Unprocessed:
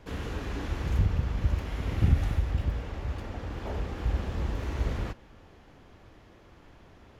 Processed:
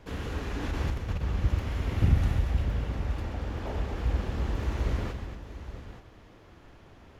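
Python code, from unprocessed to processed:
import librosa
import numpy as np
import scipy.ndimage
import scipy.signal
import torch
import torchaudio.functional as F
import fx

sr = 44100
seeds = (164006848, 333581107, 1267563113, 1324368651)

y = fx.over_compress(x, sr, threshold_db=-29.0, ratio=-0.5, at=(0.61, 1.21), fade=0.02)
y = fx.echo_multitap(y, sr, ms=(129, 232, 699, 875), db=(-10.5, -9.5, -19.0, -12.5))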